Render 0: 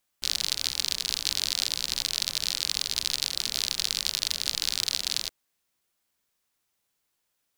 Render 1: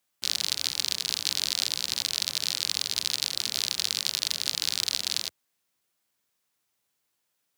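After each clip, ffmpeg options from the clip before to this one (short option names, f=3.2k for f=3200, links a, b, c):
-af "highpass=f=82:w=0.5412,highpass=f=82:w=1.3066"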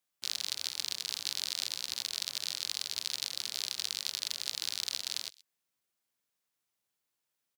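-filter_complex "[0:a]acrossover=split=420|1900[a][b][c];[a]alimiter=level_in=28.5dB:limit=-24dB:level=0:latency=1:release=331,volume=-28.5dB[d];[c]aecho=1:1:128:0.0944[e];[d][b][e]amix=inputs=3:normalize=0,volume=-7.5dB"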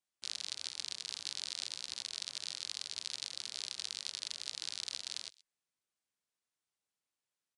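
-af "aresample=22050,aresample=44100,volume=-5.5dB"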